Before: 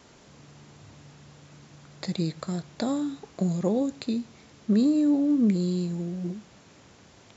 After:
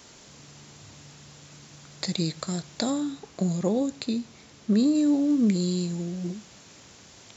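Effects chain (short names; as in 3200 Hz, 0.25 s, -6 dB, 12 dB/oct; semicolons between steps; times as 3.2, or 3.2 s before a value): high shelf 3100 Hz +11.5 dB, from 2.9 s +6.5 dB, from 4.95 s +11.5 dB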